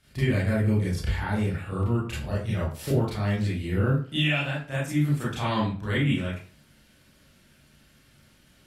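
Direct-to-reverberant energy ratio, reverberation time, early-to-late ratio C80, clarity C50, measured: -9.0 dB, 0.40 s, 9.0 dB, 2.5 dB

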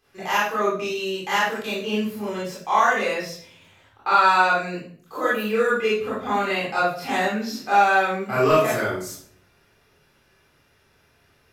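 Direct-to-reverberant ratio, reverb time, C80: -8.5 dB, 0.50 s, 6.5 dB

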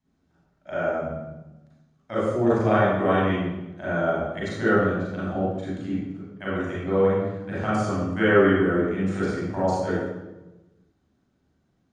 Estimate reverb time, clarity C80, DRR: 1.1 s, 0.5 dB, -9.5 dB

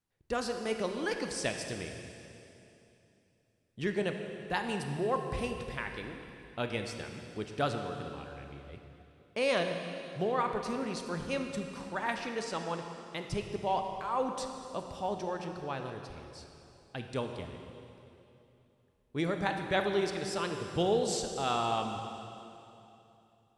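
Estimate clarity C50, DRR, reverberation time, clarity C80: 5.5 dB, 4.5 dB, 2.9 s, 6.0 dB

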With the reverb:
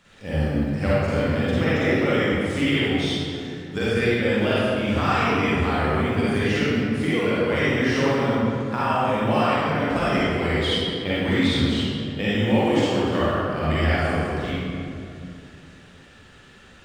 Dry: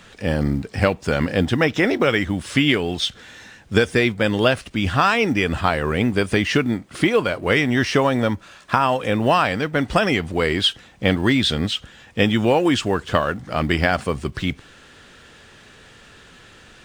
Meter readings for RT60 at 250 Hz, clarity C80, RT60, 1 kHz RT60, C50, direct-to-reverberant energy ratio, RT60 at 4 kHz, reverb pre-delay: 3.1 s, -3.0 dB, 2.5 s, 2.3 s, -7.0 dB, -9.5 dB, 1.4 s, 40 ms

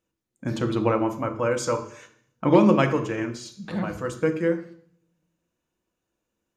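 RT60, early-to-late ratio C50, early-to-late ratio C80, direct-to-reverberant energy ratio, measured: 0.60 s, 11.0 dB, 14.5 dB, 5.5 dB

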